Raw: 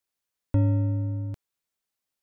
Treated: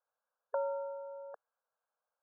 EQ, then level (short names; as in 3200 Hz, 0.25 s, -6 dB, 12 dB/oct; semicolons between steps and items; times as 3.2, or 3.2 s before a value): dynamic EQ 590 Hz, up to -4 dB, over -46 dBFS, Q 2.7; brick-wall FIR band-pass 450–1700 Hz; air absorption 500 m; +8.5 dB